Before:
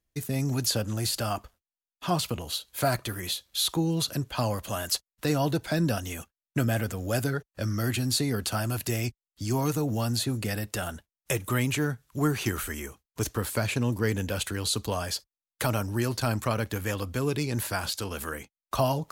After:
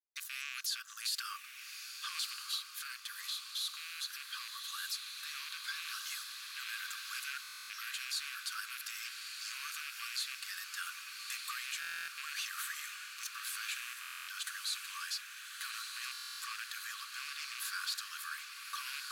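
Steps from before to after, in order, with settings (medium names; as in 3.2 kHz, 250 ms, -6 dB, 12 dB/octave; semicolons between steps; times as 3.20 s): rattle on loud lows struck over -28 dBFS, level -21 dBFS; peak limiter -24 dBFS, peak gain reduction 11 dB; small samples zeroed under -51 dBFS; rippled Chebyshev high-pass 1.1 kHz, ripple 6 dB; echo that smears into a reverb 1231 ms, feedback 64%, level -5 dB; gain riding 2 s; buffer glitch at 7.42/11.80/14.00/16.12 s, samples 1024, times 11; trim -1.5 dB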